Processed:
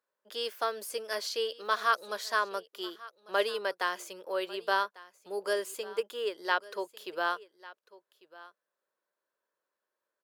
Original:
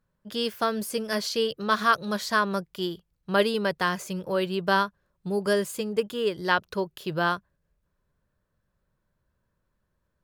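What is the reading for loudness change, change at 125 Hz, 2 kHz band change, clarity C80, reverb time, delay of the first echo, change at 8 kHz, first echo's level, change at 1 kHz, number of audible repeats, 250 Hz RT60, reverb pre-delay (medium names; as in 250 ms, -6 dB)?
-6.0 dB, under -25 dB, -5.0 dB, no reverb, no reverb, 1147 ms, -5.0 dB, -20.0 dB, -5.0 dB, 1, no reverb, no reverb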